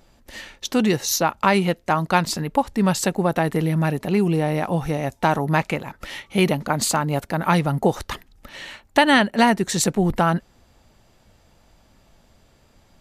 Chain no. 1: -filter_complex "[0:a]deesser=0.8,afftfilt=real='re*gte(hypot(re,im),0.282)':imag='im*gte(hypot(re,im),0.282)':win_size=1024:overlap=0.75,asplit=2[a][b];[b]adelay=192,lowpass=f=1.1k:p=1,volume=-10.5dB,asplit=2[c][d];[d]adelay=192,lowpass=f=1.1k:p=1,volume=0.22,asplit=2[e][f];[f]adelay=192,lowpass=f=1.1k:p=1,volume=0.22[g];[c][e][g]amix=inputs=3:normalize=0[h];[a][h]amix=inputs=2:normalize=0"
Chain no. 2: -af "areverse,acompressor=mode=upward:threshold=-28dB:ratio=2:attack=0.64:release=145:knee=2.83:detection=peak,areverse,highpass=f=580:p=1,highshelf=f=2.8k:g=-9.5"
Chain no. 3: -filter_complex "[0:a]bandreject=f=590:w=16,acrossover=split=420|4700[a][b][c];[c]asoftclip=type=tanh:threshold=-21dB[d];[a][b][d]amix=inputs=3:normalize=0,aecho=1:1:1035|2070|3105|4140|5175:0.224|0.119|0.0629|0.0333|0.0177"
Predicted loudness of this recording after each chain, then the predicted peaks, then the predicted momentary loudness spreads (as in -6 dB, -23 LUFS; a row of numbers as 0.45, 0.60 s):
-23.0, -26.0, -21.5 LUFS; -6.5, -4.0, -2.5 dBFS; 7, 16, 17 LU